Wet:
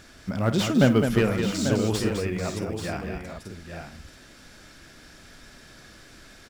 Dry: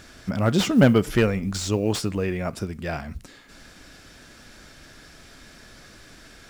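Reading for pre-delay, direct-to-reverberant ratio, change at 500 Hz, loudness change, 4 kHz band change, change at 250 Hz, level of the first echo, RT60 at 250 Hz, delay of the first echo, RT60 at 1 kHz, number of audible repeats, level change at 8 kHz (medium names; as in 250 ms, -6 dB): no reverb, no reverb, -1.5 dB, -1.5 dB, -1.5 dB, -1.5 dB, -13.5 dB, no reverb, 54 ms, no reverb, 4, -1.5 dB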